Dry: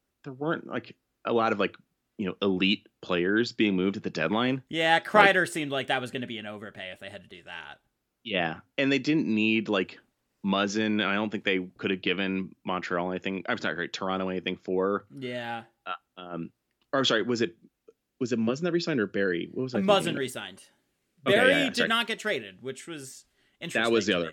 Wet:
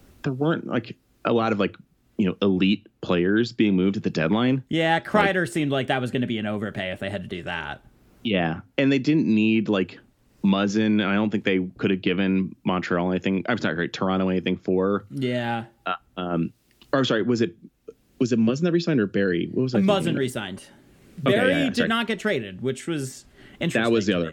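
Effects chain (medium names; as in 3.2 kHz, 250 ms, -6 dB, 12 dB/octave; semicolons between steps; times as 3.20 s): bass shelf 310 Hz +11.5 dB; three bands compressed up and down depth 70%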